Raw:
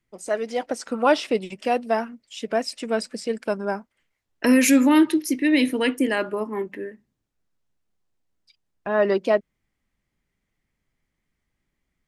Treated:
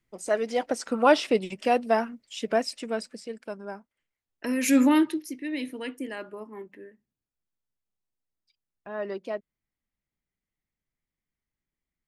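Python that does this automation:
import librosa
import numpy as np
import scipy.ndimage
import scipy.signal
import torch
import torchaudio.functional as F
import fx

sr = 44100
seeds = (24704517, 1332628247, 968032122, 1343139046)

y = fx.gain(x, sr, db=fx.line((2.53, -0.5), (3.35, -11.5), (4.56, -11.5), (4.81, -1.0), (5.33, -13.0)))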